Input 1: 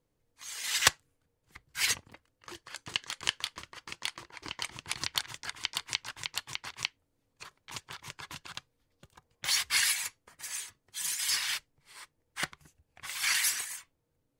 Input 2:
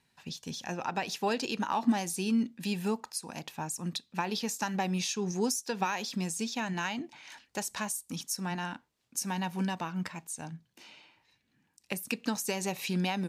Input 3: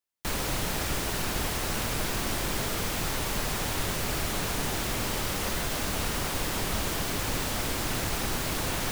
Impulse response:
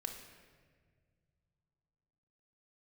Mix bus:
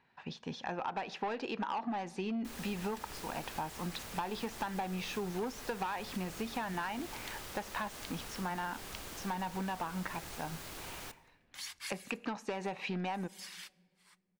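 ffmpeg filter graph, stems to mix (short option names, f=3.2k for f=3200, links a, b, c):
-filter_complex "[0:a]adelay=2100,volume=-16.5dB,asplit=2[a][b];[b]volume=-16.5dB[c];[1:a]lowpass=2.4k,equalizer=f=880:t=o:w=2.4:g=5.5,asoftclip=type=tanh:threshold=-23.5dB,volume=1.5dB,asplit=3[d][e][f];[e]volume=-17.5dB[g];[2:a]adelay=2200,volume=-16.5dB,asplit=2[h][i];[i]volume=-9dB[j];[f]apad=whole_len=727240[k];[a][k]sidechaincompress=threshold=-50dB:ratio=3:attack=16:release=161[l];[3:a]atrim=start_sample=2205[m];[c][g][j]amix=inputs=3:normalize=0[n];[n][m]afir=irnorm=-1:irlink=0[o];[l][d][h][o]amix=inputs=4:normalize=0,lowshelf=f=320:g=-5,acompressor=threshold=-34dB:ratio=6"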